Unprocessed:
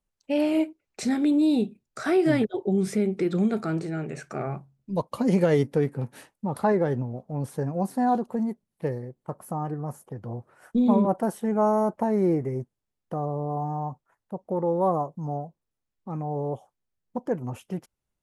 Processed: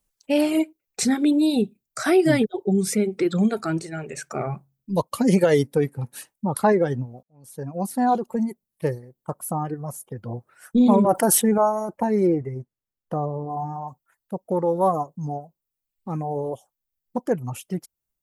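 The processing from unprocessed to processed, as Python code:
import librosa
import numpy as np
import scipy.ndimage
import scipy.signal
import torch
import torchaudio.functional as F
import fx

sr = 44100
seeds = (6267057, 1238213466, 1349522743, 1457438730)

y = fx.env_flatten(x, sr, amount_pct=50, at=(10.8, 11.58))
y = fx.high_shelf(y, sr, hz=4500.0, db=-11.0, at=(12.27, 13.88))
y = fx.edit(y, sr, fx.fade_in_span(start_s=7.23, length_s=0.95), tone=tone)
y = fx.dereverb_blind(y, sr, rt60_s=1.9)
y = fx.high_shelf(y, sr, hz=5300.0, db=12.0)
y = y * 10.0 ** (4.5 / 20.0)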